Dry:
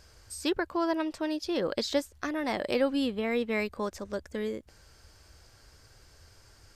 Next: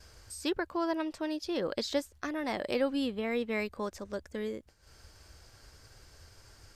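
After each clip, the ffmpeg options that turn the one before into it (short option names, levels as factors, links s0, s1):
-af "acompressor=mode=upward:threshold=0.00891:ratio=2.5,agate=range=0.0224:threshold=0.00501:ratio=3:detection=peak,volume=0.708"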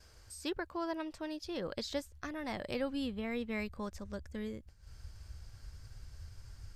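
-af "asubboost=boost=5.5:cutoff=160,volume=0.562"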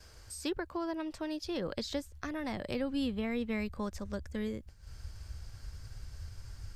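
-filter_complex "[0:a]acrossover=split=360[s0][s1];[s1]acompressor=threshold=0.00891:ratio=6[s2];[s0][s2]amix=inputs=2:normalize=0,volume=1.68"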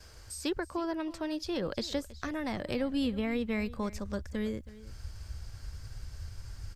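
-af "aecho=1:1:322:0.126,volume=1.33"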